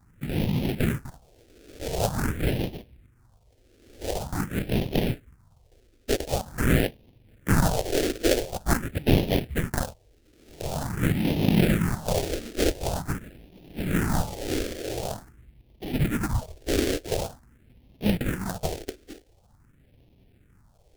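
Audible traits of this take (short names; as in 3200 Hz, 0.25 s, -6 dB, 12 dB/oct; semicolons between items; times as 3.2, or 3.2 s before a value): aliases and images of a low sample rate 1100 Hz, jitter 20%; phasing stages 4, 0.46 Hz, lowest notch 150–1400 Hz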